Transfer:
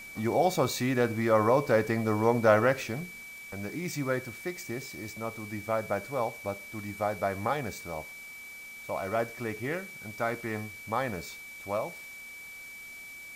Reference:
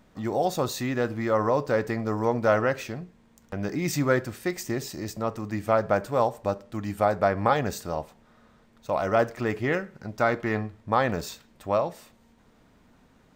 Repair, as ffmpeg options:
ffmpeg -i in.wav -af "bandreject=frequency=2300:width=30,afwtdn=0.0025,asetnsamples=nb_out_samples=441:pad=0,asendcmd='3.23 volume volume 7.5dB',volume=0dB" out.wav

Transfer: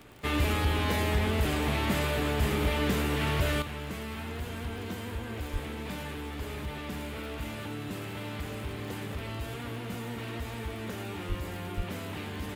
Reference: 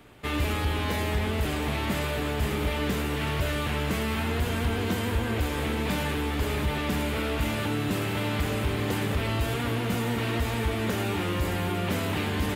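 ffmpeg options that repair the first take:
ffmpeg -i in.wav -filter_complex "[0:a]adeclick=threshold=4,asplit=3[link_01][link_02][link_03];[link_01]afade=type=out:start_time=5.52:duration=0.02[link_04];[link_02]highpass=frequency=140:width=0.5412,highpass=frequency=140:width=1.3066,afade=type=in:start_time=5.52:duration=0.02,afade=type=out:start_time=5.64:duration=0.02[link_05];[link_03]afade=type=in:start_time=5.64:duration=0.02[link_06];[link_04][link_05][link_06]amix=inputs=3:normalize=0,asplit=3[link_07][link_08][link_09];[link_07]afade=type=out:start_time=11.28:duration=0.02[link_10];[link_08]highpass=frequency=140:width=0.5412,highpass=frequency=140:width=1.3066,afade=type=in:start_time=11.28:duration=0.02,afade=type=out:start_time=11.4:duration=0.02[link_11];[link_09]afade=type=in:start_time=11.4:duration=0.02[link_12];[link_10][link_11][link_12]amix=inputs=3:normalize=0,asplit=3[link_13][link_14][link_15];[link_13]afade=type=out:start_time=11.76:duration=0.02[link_16];[link_14]highpass=frequency=140:width=0.5412,highpass=frequency=140:width=1.3066,afade=type=in:start_time=11.76:duration=0.02,afade=type=out:start_time=11.88:duration=0.02[link_17];[link_15]afade=type=in:start_time=11.88:duration=0.02[link_18];[link_16][link_17][link_18]amix=inputs=3:normalize=0,asetnsamples=nb_out_samples=441:pad=0,asendcmd='3.62 volume volume 9.5dB',volume=0dB" out.wav

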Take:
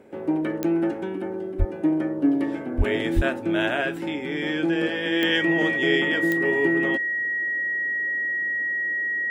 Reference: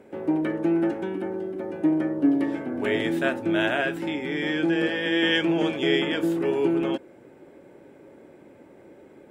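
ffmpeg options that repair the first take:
ffmpeg -i in.wav -filter_complex "[0:a]adeclick=threshold=4,bandreject=frequency=1900:width=30,asplit=3[link_01][link_02][link_03];[link_01]afade=type=out:start_time=1.58:duration=0.02[link_04];[link_02]highpass=frequency=140:width=0.5412,highpass=frequency=140:width=1.3066,afade=type=in:start_time=1.58:duration=0.02,afade=type=out:start_time=1.7:duration=0.02[link_05];[link_03]afade=type=in:start_time=1.7:duration=0.02[link_06];[link_04][link_05][link_06]amix=inputs=3:normalize=0,asplit=3[link_07][link_08][link_09];[link_07]afade=type=out:start_time=2.77:duration=0.02[link_10];[link_08]highpass=frequency=140:width=0.5412,highpass=frequency=140:width=1.3066,afade=type=in:start_time=2.77:duration=0.02,afade=type=out:start_time=2.89:duration=0.02[link_11];[link_09]afade=type=in:start_time=2.89:duration=0.02[link_12];[link_10][link_11][link_12]amix=inputs=3:normalize=0,asplit=3[link_13][link_14][link_15];[link_13]afade=type=out:start_time=3.15:duration=0.02[link_16];[link_14]highpass=frequency=140:width=0.5412,highpass=frequency=140:width=1.3066,afade=type=in:start_time=3.15:duration=0.02,afade=type=out:start_time=3.27:duration=0.02[link_17];[link_15]afade=type=in:start_time=3.27:duration=0.02[link_18];[link_16][link_17][link_18]amix=inputs=3:normalize=0" out.wav

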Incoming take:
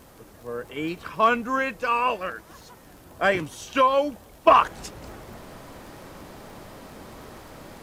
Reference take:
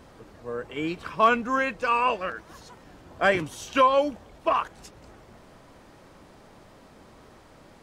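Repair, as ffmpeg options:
ffmpeg -i in.wav -af "adeclick=threshold=4,agate=range=-21dB:threshold=-41dB,asetnsamples=nb_out_samples=441:pad=0,asendcmd='4.47 volume volume -8.5dB',volume=0dB" out.wav

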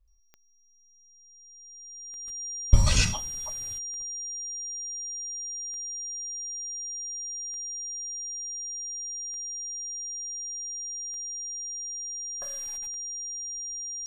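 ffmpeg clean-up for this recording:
ffmpeg -i in.wav -af "adeclick=threshold=4,bandreject=frequency=5700:width=30" out.wav

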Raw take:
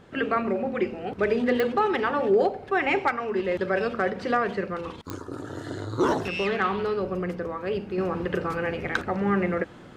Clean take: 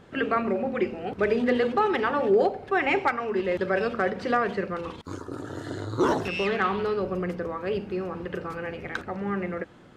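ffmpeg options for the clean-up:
ffmpeg -i in.wav -af "adeclick=threshold=4,asetnsamples=nb_out_samples=441:pad=0,asendcmd='7.98 volume volume -5.5dB',volume=0dB" out.wav

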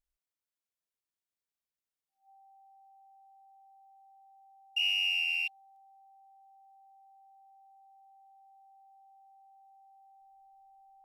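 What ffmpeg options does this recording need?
ffmpeg -i in.wav -af "bandreject=frequency=780:width=30" out.wav

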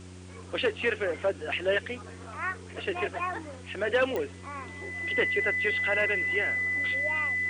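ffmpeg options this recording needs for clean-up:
ffmpeg -i in.wav -af "adeclick=threshold=4,bandreject=frequency=91.3:width_type=h:width=4,bandreject=frequency=182.6:width_type=h:width=4,bandreject=frequency=273.9:width_type=h:width=4,bandreject=frequency=365.2:width_type=h:width=4,bandreject=frequency=2000:width=30,afwtdn=0.002" out.wav

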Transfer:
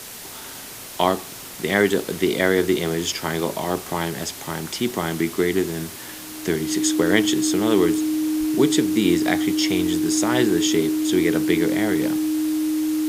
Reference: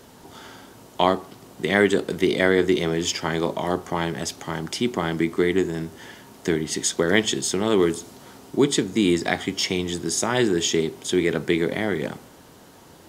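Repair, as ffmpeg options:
ffmpeg -i in.wav -filter_complex "[0:a]bandreject=frequency=310:width=30,asplit=3[link_01][link_02][link_03];[link_01]afade=type=out:start_time=8.39:duration=0.02[link_04];[link_02]highpass=frequency=140:width=0.5412,highpass=frequency=140:width=1.3066,afade=type=in:start_time=8.39:duration=0.02,afade=type=out:start_time=8.51:duration=0.02[link_05];[link_03]afade=type=in:start_time=8.51:duration=0.02[link_06];[link_04][link_05][link_06]amix=inputs=3:normalize=0,afwtdn=0.016" out.wav

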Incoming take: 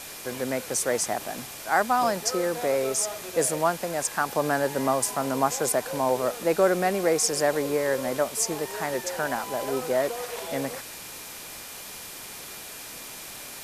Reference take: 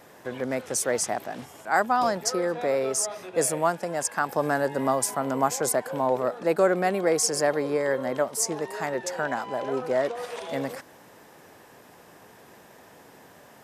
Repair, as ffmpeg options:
ffmpeg -i in.wav -af "bandreject=frequency=2400:width=30,afwtdn=0.011" out.wav

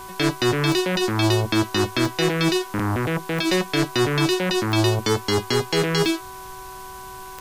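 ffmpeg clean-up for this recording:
ffmpeg -i in.wav -af "adeclick=threshold=4,bandreject=frequency=376.6:width_type=h:width=4,bandreject=frequency=753.2:width_type=h:width=4,bandreject=frequency=1129.8:width_type=h:width=4,bandreject=frequency=1506.4:width_type=h:width=4,bandreject=frequency=990:width=30,afwtdn=0.0063" out.wav

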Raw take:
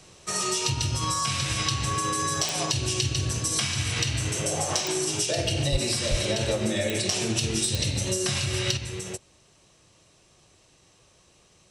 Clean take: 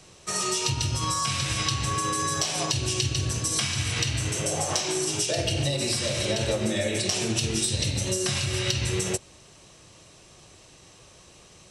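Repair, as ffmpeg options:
ffmpeg -i in.wav -filter_complex "[0:a]adeclick=threshold=4,asplit=3[link_01][link_02][link_03];[link_01]afade=type=out:start_time=5.71:duration=0.02[link_04];[link_02]highpass=frequency=140:width=0.5412,highpass=frequency=140:width=1.3066,afade=type=in:start_time=5.71:duration=0.02,afade=type=out:start_time=5.83:duration=0.02[link_05];[link_03]afade=type=in:start_time=5.83:duration=0.02[link_06];[link_04][link_05][link_06]amix=inputs=3:normalize=0,asplit=3[link_07][link_08][link_09];[link_07]afade=type=out:start_time=6.1:duration=0.02[link_10];[link_08]highpass=frequency=140:width=0.5412,highpass=frequency=140:width=1.3066,afade=type=in:start_time=6.1:duration=0.02,afade=type=out:start_time=6.22:duration=0.02[link_11];[link_09]afade=type=in:start_time=6.22:duration=0.02[link_12];[link_10][link_11][link_12]amix=inputs=3:normalize=0,asetnsamples=nb_out_samples=441:pad=0,asendcmd='8.77 volume volume 7.5dB',volume=0dB" out.wav

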